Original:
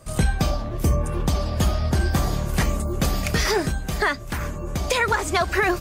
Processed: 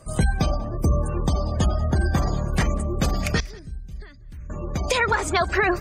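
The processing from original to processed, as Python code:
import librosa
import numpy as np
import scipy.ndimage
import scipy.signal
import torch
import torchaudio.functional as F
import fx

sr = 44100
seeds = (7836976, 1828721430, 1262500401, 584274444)

y = fx.spec_gate(x, sr, threshold_db=-30, keep='strong')
y = fx.tone_stack(y, sr, knobs='10-0-1', at=(3.4, 4.5))
y = y + 10.0 ** (-23.5 / 20.0) * np.pad(y, (int(190 * sr / 1000.0), 0))[:len(y)]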